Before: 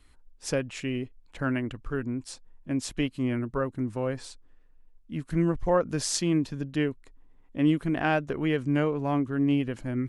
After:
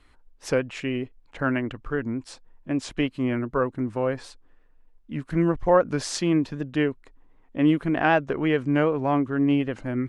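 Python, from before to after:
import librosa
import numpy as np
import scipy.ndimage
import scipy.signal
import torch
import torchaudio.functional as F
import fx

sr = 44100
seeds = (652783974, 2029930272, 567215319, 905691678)

y = fx.lowpass(x, sr, hz=1900.0, slope=6)
y = fx.low_shelf(y, sr, hz=320.0, db=-8.5)
y = fx.record_warp(y, sr, rpm=78.0, depth_cents=100.0)
y = F.gain(torch.from_numpy(y), 8.0).numpy()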